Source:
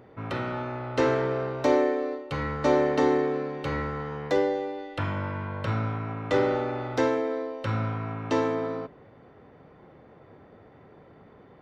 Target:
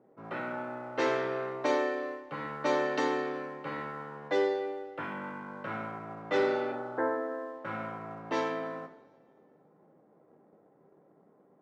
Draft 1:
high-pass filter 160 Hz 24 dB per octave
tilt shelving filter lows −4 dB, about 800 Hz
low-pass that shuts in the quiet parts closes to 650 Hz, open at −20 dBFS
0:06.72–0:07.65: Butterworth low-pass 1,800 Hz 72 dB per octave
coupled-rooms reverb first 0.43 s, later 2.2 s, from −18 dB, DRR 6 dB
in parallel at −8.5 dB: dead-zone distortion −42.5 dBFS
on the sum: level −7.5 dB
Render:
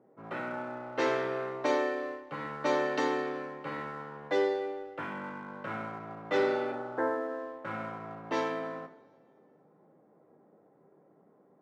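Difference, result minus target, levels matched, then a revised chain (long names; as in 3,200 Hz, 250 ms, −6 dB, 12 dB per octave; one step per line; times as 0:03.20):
dead-zone distortion: distortion +7 dB
high-pass filter 160 Hz 24 dB per octave
tilt shelving filter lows −4 dB, about 800 Hz
low-pass that shuts in the quiet parts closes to 650 Hz, open at −20 dBFS
0:06.72–0:07.65: Butterworth low-pass 1,800 Hz 72 dB per octave
coupled-rooms reverb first 0.43 s, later 2.2 s, from −18 dB, DRR 6 dB
in parallel at −8.5 dB: dead-zone distortion −50 dBFS
on the sum: level −7.5 dB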